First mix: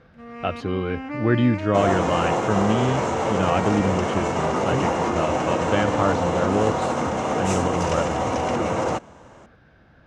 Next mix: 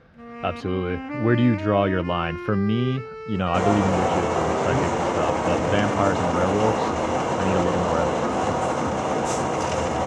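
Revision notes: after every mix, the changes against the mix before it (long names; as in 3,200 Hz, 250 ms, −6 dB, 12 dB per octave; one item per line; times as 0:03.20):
second sound: entry +1.80 s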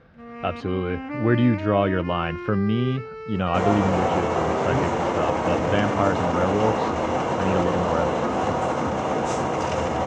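master: add high-frequency loss of the air 67 metres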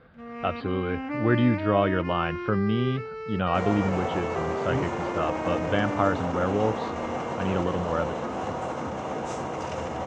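speech: add Chebyshev low-pass with heavy ripple 4,800 Hz, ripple 3 dB
second sound −7.5 dB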